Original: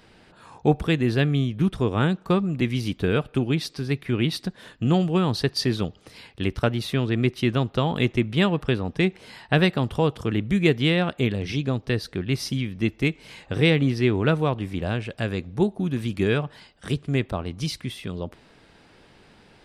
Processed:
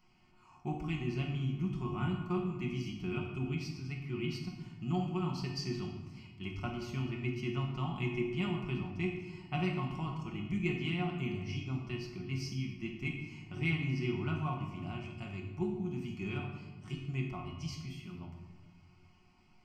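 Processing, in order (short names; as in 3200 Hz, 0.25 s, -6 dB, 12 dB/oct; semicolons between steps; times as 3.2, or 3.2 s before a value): fixed phaser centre 2500 Hz, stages 8; resonator 360 Hz, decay 0.47 s, harmonics all, mix 80%; reverb RT60 1.3 s, pre-delay 5 ms, DRR 0.5 dB; gain -2 dB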